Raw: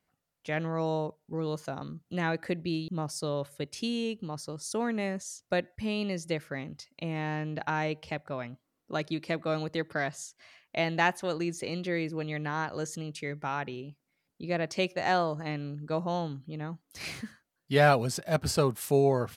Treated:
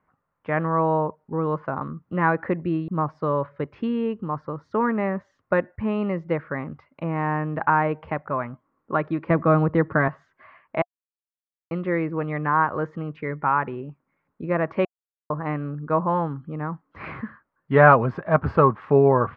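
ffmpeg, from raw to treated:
-filter_complex "[0:a]asettb=1/sr,asplit=3[s0][s1][s2];[s0]atrim=end=9.304[s3];[s1]atrim=start=9.3:end=10.08,asetpts=PTS-STARTPTS,afade=t=in:d=0.004:c=qsin,afade=t=out:st=0.776:d=0.004:c=qsin,lowshelf=f=300:g=11[s4];[s2]atrim=start=10.076[s5];[s3][s4]acrossfade=d=0.004:c1=hsin:c2=qsin[s6];[s6][s5]acrossfade=d=0.004:c1=qsin:c2=hsin,asplit=5[s7][s8][s9][s10][s11];[s7]atrim=end=10.82,asetpts=PTS-STARTPTS,afade=t=out:st=10.816:d=0.004:c=hsin[s12];[s8]atrim=start=10.82:end=11.71,asetpts=PTS-STARTPTS,volume=0[s13];[s9]atrim=start=11.71:end=14.85,asetpts=PTS-STARTPTS,afade=t=in:d=0.004:c=hsin,afade=t=out:st=3.136:d=0.004:c=hsin[s14];[s10]atrim=start=14.85:end=15.3,asetpts=PTS-STARTPTS,volume=0[s15];[s11]atrim=start=15.3,asetpts=PTS-STARTPTS,afade=t=in:d=0.004:c=hsin[s16];[s12][s13][s14][s15][s16]concat=n=5:v=0:a=1,lowpass=f=1900:w=0.5412,lowpass=f=1900:w=1.3066,equalizer=f=1100:t=o:w=0.62:g=10.5,bandreject=f=710:w=12,volume=2.24"

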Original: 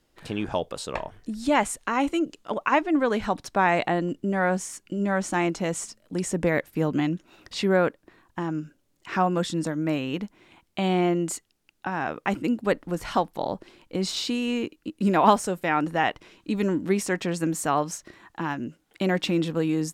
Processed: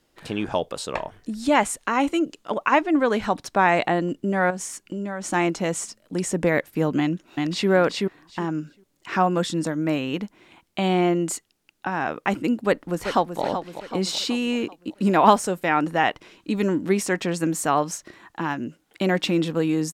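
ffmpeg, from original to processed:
-filter_complex "[0:a]asettb=1/sr,asplit=3[s0][s1][s2];[s0]atrim=end=4.504[s3];[s1]atrim=start=4.5:end=5.3,asetpts=PTS-STARTPTS,afade=t=in:d=0.004:c=qsin,afade=t=out:st=0.796:d=0.004:c=qsin,acompressor=threshold=0.0398:ratio=6:attack=3.2:release=140:knee=1:detection=peak[s4];[s2]atrim=start=5.296[s5];[s3][s4]acrossfade=d=0.004:c1=hsin:c2=qsin[s6];[s6][s5]acrossfade=d=0.004:c1=qsin:c2=hsin,asplit=2[s7][s8];[s8]afade=t=in:st=6.99:d=0.01,afade=t=out:st=7.69:d=0.01,aecho=0:1:380|760|1140:0.794328|0.119149|0.0178724[s9];[s7][s9]amix=inputs=2:normalize=0,asplit=2[s10][s11];[s11]afade=t=in:st=12.67:d=0.01,afade=t=out:st=13.42:d=0.01,aecho=0:1:380|760|1140|1520|1900|2280:0.375837|0.187919|0.0939594|0.0469797|0.0234898|0.0117449[s12];[s10][s12]amix=inputs=2:normalize=0,lowshelf=f=91:g=-7,volume=1.41"

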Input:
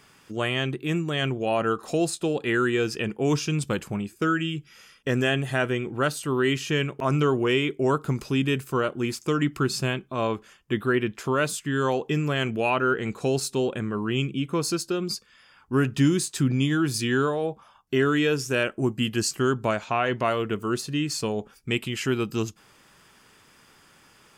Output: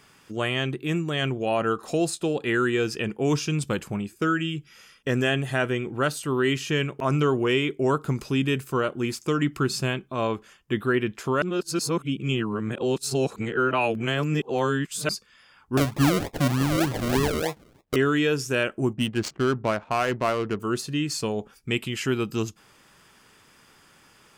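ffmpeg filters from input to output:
-filter_complex "[0:a]asettb=1/sr,asplit=3[s0][s1][s2];[s0]atrim=end=15.774[s3];[s1]atrim=start=15.77:end=17.96,asetpts=PTS-STARTPTS,afade=t=in:d=0.004:c=qsin,afade=t=out:st=2.186:d=0.004:c=qsin,acrusher=samples=41:mix=1:aa=0.000001:lfo=1:lforange=24.6:lforate=3.3[s4];[s2]atrim=start=17.956[s5];[s3][s4]acrossfade=d=0.004:c1=hsin:c2=qsin[s6];[s6][s5]acrossfade=d=0.004:c1=qsin:c2=hsin,asettb=1/sr,asplit=3[s7][s8][s9];[s7]atrim=end=18.934[s10];[s8]atrim=start=18.93:end=20.6,asetpts=PTS-STARTPTS,afade=t=in:d=0.004:c=qsin,afade=t=out:st=1.666:d=0.004:c=qsin,adynamicsmooth=sensitivity=3.5:basefreq=720[s11];[s9]atrim=start=20.596[s12];[s10][s11]acrossfade=d=0.004:c1=hsin:c2=qsin[s13];[s13][s12]acrossfade=d=0.004:c1=qsin:c2=hsin,asplit=3[s14][s15][s16];[s14]atrim=end=11.422[s17];[s15]atrim=start=11.418:end=15.092,asetpts=PTS-STARTPTS,areverse[s18];[s16]atrim=start=15.088[s19];[s17][s18]acrossfade=d=0.004:c1=hsin:c2=hsin[s20];[s20][s19]acrossfade=d=0.004:c1=hsin:c2=hsin"

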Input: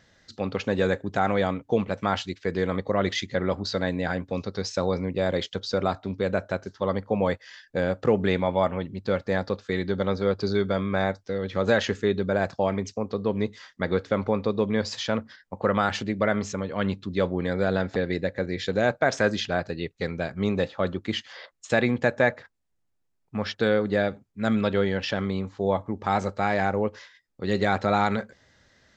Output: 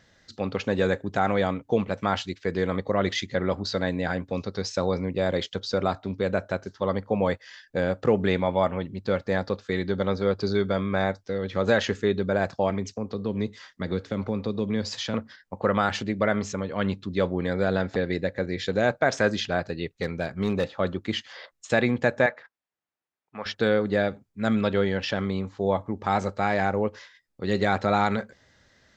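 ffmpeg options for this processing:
-filter_complex "[0:a]asettb=1/sr,asplit=3[s0][s1][s2];[s0]atrim=end=12.704[s3];[s1]atrim=start=12.7:end=15.14,asetpts=PTS-STARTPTS,afade=t=in:d=0.004:c=qsin,afade=t=out:st=2.436:d=0.004:c=qsin,acrossover=split=360|3000[s4][s5][s6];[s5]acompressor=threshold=0.0224:ratio=6:attack=3.2:release=140:knee=2.83:detection=peak[s7];[s4][s7][s6]amix=inputs=3:normalize=0[s8];[s2]atrim=start=15.136[s9];[s3][s8]acrossfade=d=0.004:c1=hsin:c2=qsin[s10];[s10][s9]acrossfade=d=0.004:c1=qsin:c2=hsin,asettb=1/sr,asplit=3[s11][s12][s13];[s11]atrim=end=20.024[s14];[s12]atrim=start=20.02:end=20.65,asetpts=PTS-STARTPTS,afade=t=in:d=0.004:c=qsin,afade=t=out:st=0.626:d=0.004:c=qsin,asoftclip=type=hard:threshold=0.133[s15];[s13]atrim=start=20.646[s16];[s14][s15]acrossfade=d=0.004:c1=hsin:c2=qsin[s17];[s17][s16]acrossfade=d=0.004:c1=qsin:c2=hsin,asettb=1/sr,asplit=3[s18][s19][s20];[s18]atrim=end=22.264[s21];[s19]atrim=start=22.26:end=23.46,asetpts=PTS-STARTPTS,afade=t=in:d=0.004:c=qsin,afade=t=out:st=1.196:d=0.004:c=qsin,bandpass=f=1500:t=q:w=0.6[s22];[s20]atrim=start=23.456[s23];[s21][s22]acrossfade=d=0.004:c1=hsin:c2=qsin[s24];[s24][s23]acrossfade=d=0.004:c1=qsin:c2=hsin"

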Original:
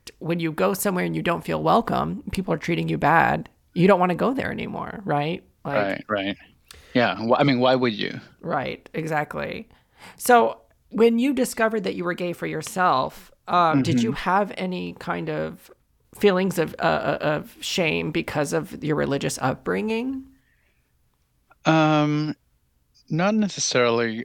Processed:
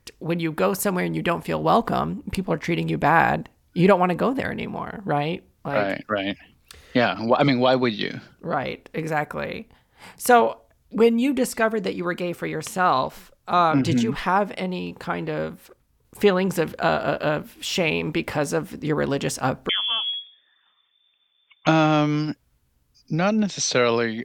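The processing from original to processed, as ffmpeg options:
-filter_complex "[0:a]asettb=1/sr,asplit=3[s0][s1][s2];[s0]atrim=end=19.694[s3];[s1]atrim=start=19.69:end=21.67,asetpts=PTS-STARTPTS,afade=t=in:d=0.004:c=qsin,afade=t=out:st=1.976:d=0.004:c=qsin,lowpass=f=3100:t=q:w=0.5098,lowpass=f=3100:t=q:w=0.6013,lowpass=f=3100:t=q:w=0.9,lowpass=f=3100:t=q:w=2.563,afreqshift=-3600[s4];[s2]atrim=start=21.666[s5];[s3][s4]acrossfade=d=0.004:c1=hsin:c2=qsin[s6];[s6][s5]acrossfade=d=0.004:c1=qsin:c2=hsin"

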